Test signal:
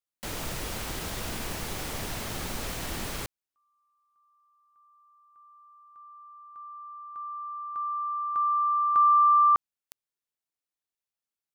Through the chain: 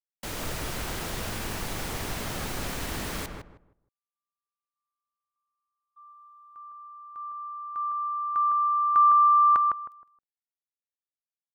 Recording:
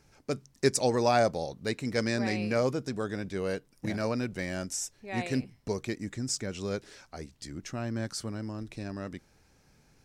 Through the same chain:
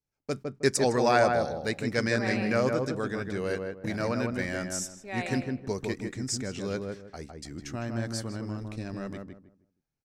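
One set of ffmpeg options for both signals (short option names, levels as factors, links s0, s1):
-filter_complex "[0:a]agate=range=0.0398:threshold=0.00282:ratio=16:release=115:detection=peak,adynamicequalizer=threshold=0.00794:dfrequency=1600:dqfactor=1.5:tfrequency=1600:tqfactor=1.5:attack=5:release=100:ratio=0.375:range=3:mode=boostabove:tftype=bell,asplit=2[s0][s1];[s1]adelay=157,lowpass=f=1300:p=1,volume=0.708,asplit=2[s2][s3];[s3]adelay=157,lowpass=f=1300:p=1,volume=0.27,asplit=2[s4][s5];[s5]adelay=157,lowpass=f=1300:p=1,volume=0.27,asplit=2[s6][s7];[s7]adelay=157,lowpass=f=1300:p=1,volume=0.27[s8];[s0][s2][s4][s6][s8]amix=inputs=5:normalize=0"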